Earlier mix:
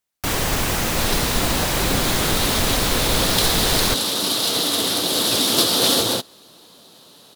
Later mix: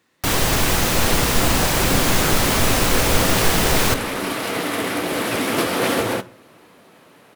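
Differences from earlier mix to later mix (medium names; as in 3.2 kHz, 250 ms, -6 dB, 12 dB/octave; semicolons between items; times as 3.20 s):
speech: unmuted; second sound: add resonant high shelf 2.9 kHz -9.5 dB, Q 3; reverb: on, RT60 0.50 s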